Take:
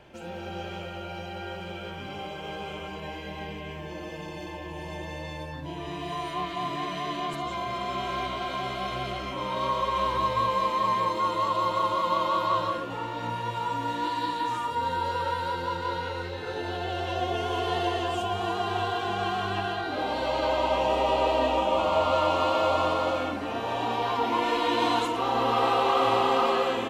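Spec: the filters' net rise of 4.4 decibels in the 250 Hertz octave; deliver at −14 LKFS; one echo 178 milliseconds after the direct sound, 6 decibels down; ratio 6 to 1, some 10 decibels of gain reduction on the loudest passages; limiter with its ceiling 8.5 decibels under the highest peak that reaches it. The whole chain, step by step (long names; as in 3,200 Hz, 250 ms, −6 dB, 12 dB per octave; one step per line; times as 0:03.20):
parametric band 250 Hz +6 dB
downward compressor 6 to 1, threshold −30 dBFS
brickwall limiter −30 dBFS
single-tap delay 178 ms −6 dB
level +23 dB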